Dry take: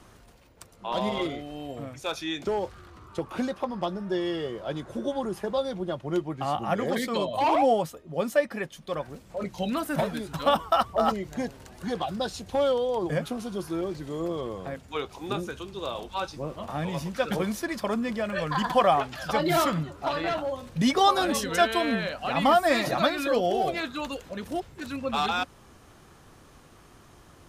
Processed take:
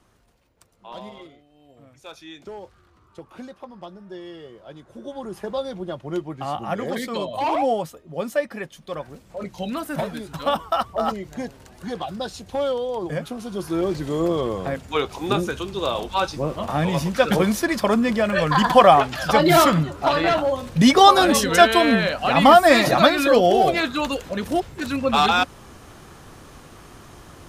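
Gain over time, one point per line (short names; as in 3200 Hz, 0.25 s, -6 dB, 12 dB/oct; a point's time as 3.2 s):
0.94 s -8 dB
1.49 s -19.5 dB
2.03 s -9 dB
4.86 s -9 dB
5.44 s +0.5 dB
13.36 s +0.5 dB
13.91 s +9 dB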